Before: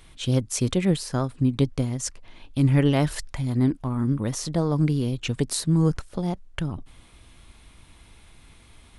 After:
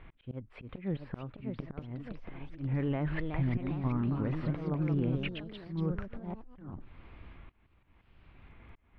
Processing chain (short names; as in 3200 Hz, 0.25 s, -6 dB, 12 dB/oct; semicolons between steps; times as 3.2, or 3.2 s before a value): inverse Chebyshev low-pass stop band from 5900 Hz, stop band 50 dB; auto swell 0.574 s; limiter -23.5 dBFS, peak gain reduction 11.5 dB; echoes that change speed 0.691 s, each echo +2 st, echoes 3, each echo -6 dB